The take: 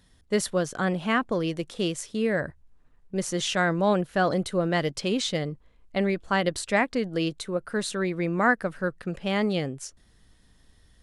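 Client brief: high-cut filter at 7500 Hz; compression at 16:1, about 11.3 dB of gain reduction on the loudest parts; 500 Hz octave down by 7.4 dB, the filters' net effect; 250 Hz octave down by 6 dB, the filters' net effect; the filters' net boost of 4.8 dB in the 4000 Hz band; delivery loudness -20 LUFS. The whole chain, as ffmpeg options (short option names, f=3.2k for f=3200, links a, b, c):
-af "lowpass=7.5k,equalizer=f=250:t=o:g=-7,equalizer=f=500:t=o:g=-7.5,equalizer=f=4k:t=o:g=6.5,acompressor=threshold=-28dB:ratio=16,volume=13.5dB"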